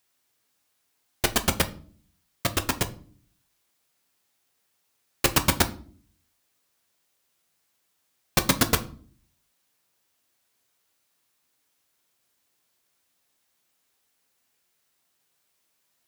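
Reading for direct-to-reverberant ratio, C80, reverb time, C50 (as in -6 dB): 7.5 dB, 22.0 dB, not exponential, 17.0 dB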